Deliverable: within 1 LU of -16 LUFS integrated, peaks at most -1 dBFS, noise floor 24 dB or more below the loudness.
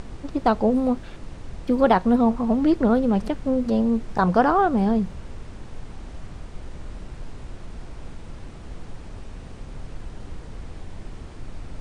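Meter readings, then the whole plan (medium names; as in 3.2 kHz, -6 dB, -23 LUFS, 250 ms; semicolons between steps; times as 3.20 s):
noise floor -40 dBFS; noise floor target -46 dBFS; loudness -21.5 LUFS; peak level -5.0 dBFS; loudness target -16.0 LUFS
-> noise print and reduce 6 dB; trim +5.5 dB; peak limiter -1 dBFS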